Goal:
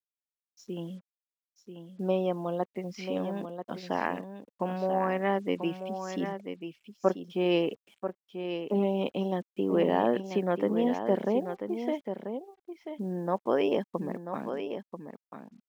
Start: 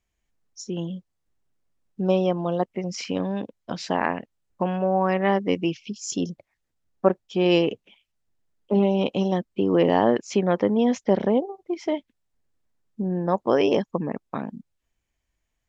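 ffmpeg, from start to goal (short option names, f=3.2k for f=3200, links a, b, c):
-af "highpass=170,lowpass=3.4k,acrusher=bits=8:mix=0:aa=0.5,aecho=1:1:988:0.376,volume=-6dB"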